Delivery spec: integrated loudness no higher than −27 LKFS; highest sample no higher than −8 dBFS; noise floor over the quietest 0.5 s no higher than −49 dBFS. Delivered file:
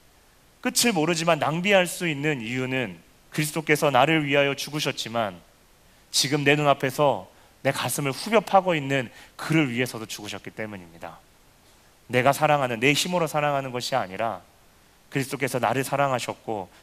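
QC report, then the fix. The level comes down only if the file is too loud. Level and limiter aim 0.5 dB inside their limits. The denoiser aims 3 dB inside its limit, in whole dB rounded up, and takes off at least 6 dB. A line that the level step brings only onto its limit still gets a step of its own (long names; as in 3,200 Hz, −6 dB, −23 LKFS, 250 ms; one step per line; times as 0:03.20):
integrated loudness −24.0 LKFS: out of spec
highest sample −4.5 dBFS: out of spec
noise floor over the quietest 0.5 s −57 dBFS: in spec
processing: level −3.5 dB
brickwall limiter −8.5 dBFS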